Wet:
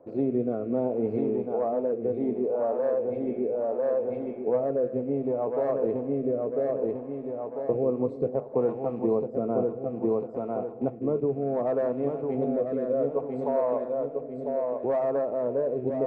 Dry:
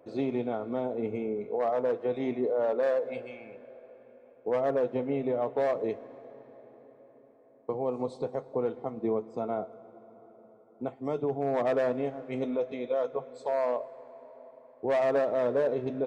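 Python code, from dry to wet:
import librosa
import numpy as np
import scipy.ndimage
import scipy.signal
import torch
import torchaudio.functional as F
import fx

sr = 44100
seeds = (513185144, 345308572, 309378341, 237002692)

p1 = fx.rattle_buzz(x, sr, strikes_db=-46.0, level_db=-43.0)
p2 = fx.curve_eq(p1, sr, hz=(520.0, 1100.0, 3000.0), db=(0, -3, -21))
p3 = p2 + fx.echo_feedback(p2, sr, ms=998, feedback_pct=42, wet_db=-5.0, dry=0)
p4 = fx.rotary(p3, sr, hz=0.65)
p5 = fx.rider(p4, sr, range_db=5, speed_s=0.5)
y = F.gain(torch.from_numpy(p5), 5.0).numpy()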